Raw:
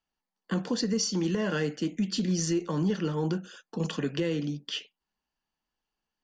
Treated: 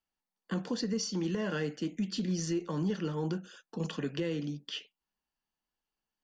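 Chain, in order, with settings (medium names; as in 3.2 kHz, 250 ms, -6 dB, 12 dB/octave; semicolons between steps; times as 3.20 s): dynamic bell 7.8 kHz, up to -4 dB, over -48 dBFS, Q 1.1; trim -4.5 dB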